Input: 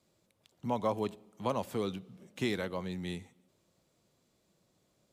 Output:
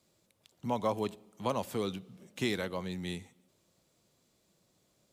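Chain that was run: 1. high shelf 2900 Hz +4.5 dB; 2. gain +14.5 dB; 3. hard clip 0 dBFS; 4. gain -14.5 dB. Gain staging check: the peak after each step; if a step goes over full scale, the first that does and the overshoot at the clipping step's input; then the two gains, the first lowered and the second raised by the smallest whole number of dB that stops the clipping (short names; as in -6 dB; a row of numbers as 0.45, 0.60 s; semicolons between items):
-18.5, -4.0, -4.0, -18.5 dBFS; no overload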